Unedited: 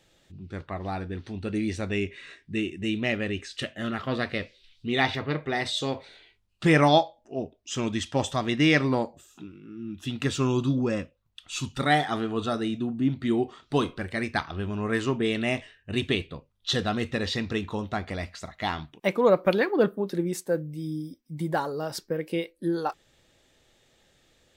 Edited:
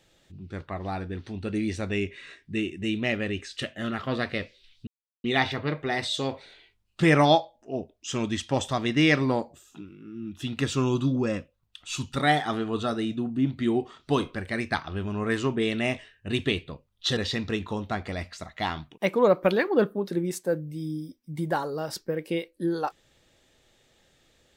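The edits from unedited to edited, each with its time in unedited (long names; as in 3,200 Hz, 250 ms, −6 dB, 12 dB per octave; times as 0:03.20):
0:04.87: splice in silence 0.37 s
0:16.80–0:17.19: remove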